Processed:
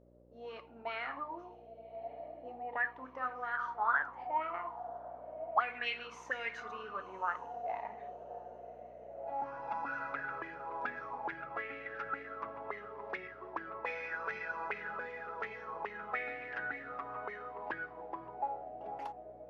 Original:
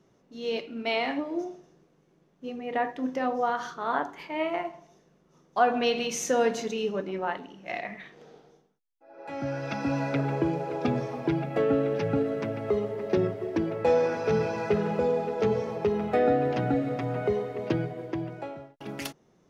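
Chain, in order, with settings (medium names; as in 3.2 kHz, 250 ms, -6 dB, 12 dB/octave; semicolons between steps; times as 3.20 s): echo that smears into a reverb 1134 ms, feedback 45%, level -15.5 dB; auto-wah 560–2200 Hz, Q 9.2, up, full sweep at -20.5 dBFS; mains buzz 60 Hz, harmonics 10, -72 dBFS -2 dB/octave; trim +8 dB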